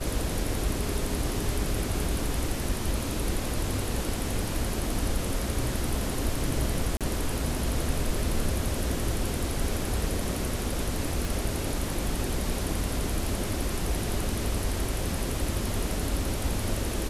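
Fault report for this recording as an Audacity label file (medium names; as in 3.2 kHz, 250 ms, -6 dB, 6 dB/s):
6.970000	7.010000	dropout 37 ms
11.250000	11.250000	pop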